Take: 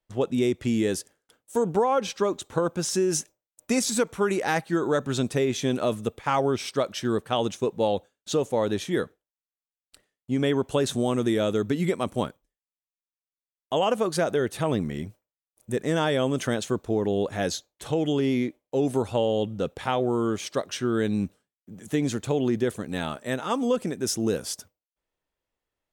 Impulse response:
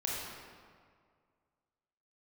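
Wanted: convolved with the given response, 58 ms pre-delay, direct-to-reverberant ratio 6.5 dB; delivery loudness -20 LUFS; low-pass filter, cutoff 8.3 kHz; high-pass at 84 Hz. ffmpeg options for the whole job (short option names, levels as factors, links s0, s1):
-filter_complex "[0:a]highpass=84,lowpass=8300,asplit=2[s0][s1];[1:a]atrim=start_sample=2205,adelay=58[s2];[s1][s2]afir=irnorm=-1:irlink=0,volume=0.282[s3];[s0][s3]amix=inputs=2:normalize=0,volume=2"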